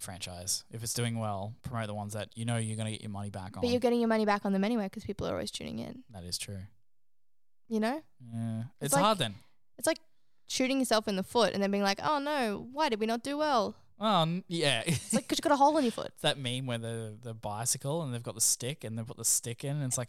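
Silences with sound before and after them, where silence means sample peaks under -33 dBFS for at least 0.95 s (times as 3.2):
6.55–7.71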